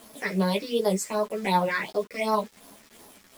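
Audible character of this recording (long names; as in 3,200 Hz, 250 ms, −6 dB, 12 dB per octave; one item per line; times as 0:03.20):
phaser sweep stages 6, 2.7 Hz, lowest notch 800–2,600 Hz
a quantiser's noise floor 8 bits, dither none
a shimmering, thickened sound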